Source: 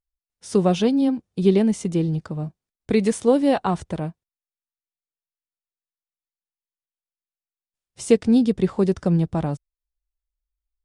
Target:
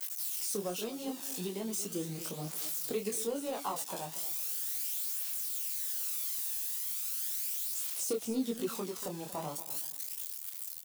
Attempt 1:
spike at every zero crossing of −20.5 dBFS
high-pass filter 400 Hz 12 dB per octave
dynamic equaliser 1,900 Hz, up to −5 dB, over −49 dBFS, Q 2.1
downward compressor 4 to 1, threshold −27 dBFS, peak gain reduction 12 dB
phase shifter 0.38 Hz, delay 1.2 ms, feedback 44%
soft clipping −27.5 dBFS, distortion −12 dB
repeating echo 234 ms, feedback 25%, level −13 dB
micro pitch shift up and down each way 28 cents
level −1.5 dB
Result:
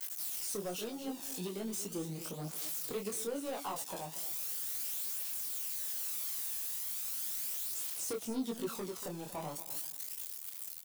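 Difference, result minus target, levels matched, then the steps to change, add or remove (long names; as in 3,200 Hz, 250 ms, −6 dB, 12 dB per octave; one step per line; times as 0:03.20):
soft clipping: distortion +12 dB
change: soft clipping −17.5 dBFS, distortion −25 dB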